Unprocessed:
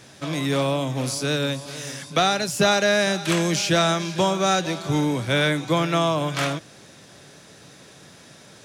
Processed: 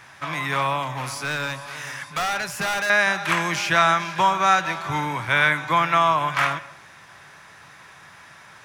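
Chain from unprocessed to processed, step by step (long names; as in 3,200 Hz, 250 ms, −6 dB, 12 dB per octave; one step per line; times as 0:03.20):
octave-band graphic EQ 125/250/500/1,000/2,000/4,000/8,000 Hz −3/−10/−9/+10/+7/−5/−6 dB
0:00.82–0:02.90: hard clipping −22.5 dBFS, distortion −9 dB
convolution reverb, pre-delay 133 ms, DRR 18 dB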